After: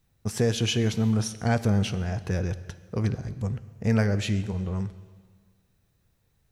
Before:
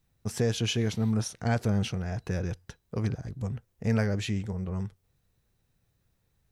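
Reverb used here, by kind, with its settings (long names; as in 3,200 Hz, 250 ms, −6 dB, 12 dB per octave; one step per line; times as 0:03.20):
dense smooth reverb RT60 1.7 s, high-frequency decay 1×, DRR 13.5 dB
level +3 dB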